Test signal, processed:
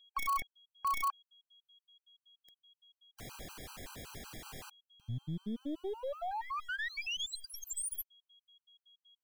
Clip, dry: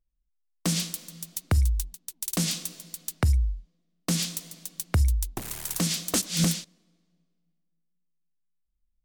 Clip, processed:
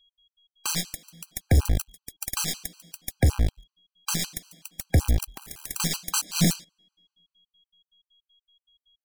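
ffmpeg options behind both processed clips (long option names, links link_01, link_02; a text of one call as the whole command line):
ffmpeg -i in.wav -filter_complex "[0:a]aeval=exprs='val(0)+0.00178*sin(2*PI*3300*n/s)':channel_layout=same,asplit=2[link_01][link_02];[link_02]acrusher=bits=5:dc=4:mix=0:aa=0.000001,volume=-4dB[link_03];[link_01][link_03]amix=inputs=2:normalize=0,aeval=exprs='0.376*(cos(1*acos(clip(val(0)/0.376,-1,1)))-cos(1*PI/2))+0.0211*(cos(7*acos(clip(val(0)/0.376,-1,1)))-cos(7*PI/2))+0.0376*(cos(8*acos(clip(val(0)/0.376,-1,1)))-cos(8*PI/2))':channel_layout=same,afftfilt=real='re*gt(sin(2*PI*5.3*pts/sr)*(1-2*mod(floor(b*sr/1024/800),2)),0)':imag='im*gt(sin(2*PI*5.3*pts/sr)*(1-2*mod(floor(b*sr/1024/800),2)),0)':win_size=1024:overlap=0.75,volume=-1dB" out.wav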